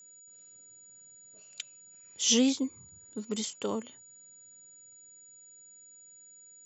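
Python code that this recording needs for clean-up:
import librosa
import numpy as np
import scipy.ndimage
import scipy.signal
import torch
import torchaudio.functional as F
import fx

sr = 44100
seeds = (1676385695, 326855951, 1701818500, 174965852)

y = fx.notch(x, sr, hz=6900.0, q=30.0)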